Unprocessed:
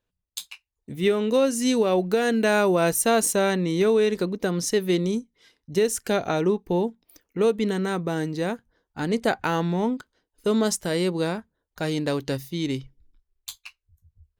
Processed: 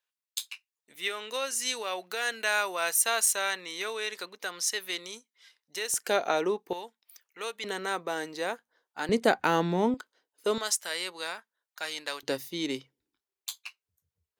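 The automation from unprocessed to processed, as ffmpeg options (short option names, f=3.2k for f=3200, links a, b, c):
-af "asetnsamples=n=441:p=0,asendcmd='5.94 highpass f 500;6.73 highpass f 1300;7.64 highpass f 620;9.09 highpass f 220;9.94 highpass f 470;10.58 highpass f 1200;12.23 highpass f 380',highpass=1.2k"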